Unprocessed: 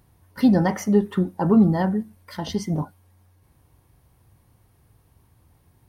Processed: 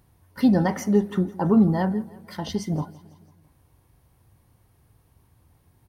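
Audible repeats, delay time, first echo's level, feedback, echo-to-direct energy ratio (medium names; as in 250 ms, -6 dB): 3, 166 ms, -20.5 dB, 57%, -19.0 dB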